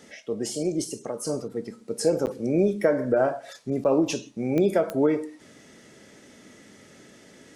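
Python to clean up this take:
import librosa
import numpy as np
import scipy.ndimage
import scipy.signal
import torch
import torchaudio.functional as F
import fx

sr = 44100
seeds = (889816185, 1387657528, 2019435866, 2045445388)

y = fx.fix_declick_ar(x, sr, threshold=10.0)
y = fx.fix_interpolate(y, sr, at_s=(2.26, 3.84), length_ms=9.6)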